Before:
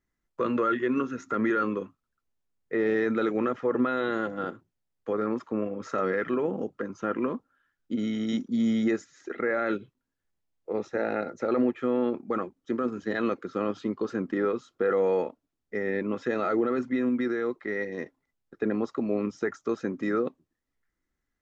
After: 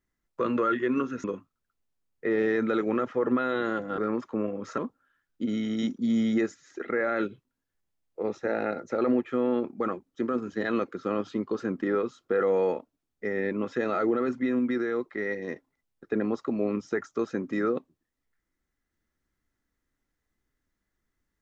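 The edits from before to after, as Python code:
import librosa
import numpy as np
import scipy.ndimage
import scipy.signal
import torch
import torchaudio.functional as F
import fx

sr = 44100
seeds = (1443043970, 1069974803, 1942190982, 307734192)

y = fx.edit(x, sr, fx.cut(start_s=1.24, length_s=0.48),
    fx.cut(start_s=4.46, length_s=0.7),
    fx.cut(start_s=5.96, length_s=1.32), tone=tone)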